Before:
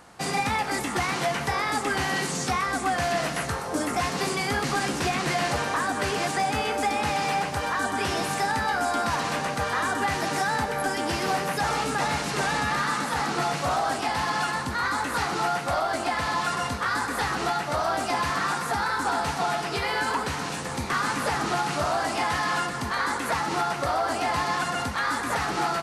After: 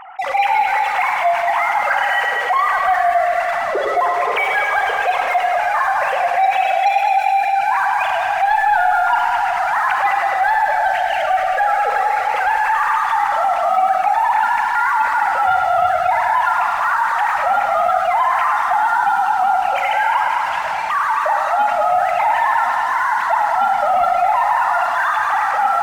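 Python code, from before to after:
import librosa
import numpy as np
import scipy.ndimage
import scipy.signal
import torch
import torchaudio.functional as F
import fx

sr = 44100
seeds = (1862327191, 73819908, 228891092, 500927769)

y = fx.sine_speech(x, sr)
y = fx.spec_gate(y, sr, threshold_db=-25, keep='strong')
y = fx.peak_eq(y, sr, hz=920.0, db=5.5, octaves=0.39)
y = fx.leveller(y, sr, passes=2)
y = fx.echo_heads(y, sr, ms=105, heads='first and second', feedback_pct=59, wet_db=-10.5)
y = fx.rev_schroeder(y, sr, rt60_s=2.0, comb_ms=27, drr_db=5.0)
y = fx.env_flatten(y, sr, amount_pct=50)
y = F.gain(torch.from_numpy(y), -4.5).numpy()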